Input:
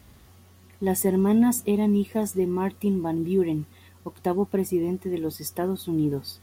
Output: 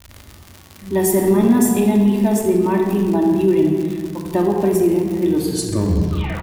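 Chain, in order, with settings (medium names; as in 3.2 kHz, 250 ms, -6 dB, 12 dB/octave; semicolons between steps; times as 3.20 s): tape stop on the ending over 1.20 s; bands offset in time lows, highs 90 ms, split 150 Hz; simulated room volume 2900 m³, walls mixed, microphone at 2.6 m; in parallel at -1.5 dB: peak limiter -14 dBFS, peak gain reduction 7 dB; on the sum: crackle 130 per s -25 dBFS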